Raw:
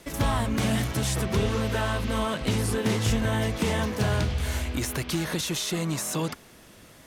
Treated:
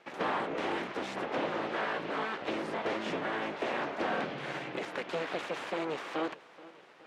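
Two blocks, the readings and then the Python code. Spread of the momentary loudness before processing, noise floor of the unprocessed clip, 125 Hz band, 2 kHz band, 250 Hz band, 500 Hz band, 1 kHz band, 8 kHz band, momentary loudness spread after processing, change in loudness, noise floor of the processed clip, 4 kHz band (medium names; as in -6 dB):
4 LU, -52 dBFS, -23.5 dB, -3.0 dB, -10.5 dB, -4.0 dB, -1.5 dB, -23.5 dB, 4 LU, -8.0 dB, -56 dBFS, -10.0 dB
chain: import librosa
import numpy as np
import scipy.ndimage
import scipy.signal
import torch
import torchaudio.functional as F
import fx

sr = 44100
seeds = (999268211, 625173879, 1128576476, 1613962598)

y = fx.rider(x, sr, range_db=10, speed_s=2.0)
y = np.abs(y)
y = fx.bandpass_edges(y, sr, low_hz=330.0, high_hz=2300.0)
y = fx.echo_feedback(y, sr, ms=427, feedback_pct=57, wet_db=-20.5)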